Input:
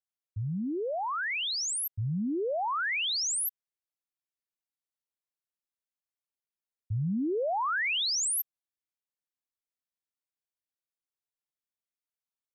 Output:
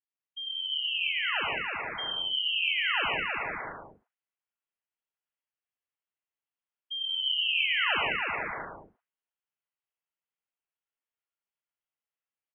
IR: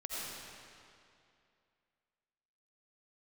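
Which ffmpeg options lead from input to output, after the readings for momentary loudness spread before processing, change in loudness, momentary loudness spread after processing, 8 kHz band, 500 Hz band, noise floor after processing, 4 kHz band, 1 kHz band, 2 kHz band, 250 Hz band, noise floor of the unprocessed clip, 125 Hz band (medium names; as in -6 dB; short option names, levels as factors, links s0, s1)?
7 LU, +1.5 dB, 13 LU, under -40 dB, -7.5 dB, under -85 dBFS, +6.0 dB, -1.5 dB, +5.0 dB, -15.5 dB, under -85 dBFS, -18.0 dB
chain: -filter_complex "[0:a]aecho=1:1:320|512|627.2|696.3|737.8:0.631|0.398|0.251|0.158|0.1[s0];[1:a]atrim=start_sample=2205,afade=t=out:st=0.25:d=0.01,atrim=end_sample=11466[s1];[s0][s1]afir=irnorm=-1:irlink=0,lowpass=f=2800:t=q:w=0.5098,lowpass=f=2800:t=q:w=0.6013,lowpass=f=2800:t=q:w=0.9,lowpass=f=2800:t=q:w=2.563,afreqshift=-3300"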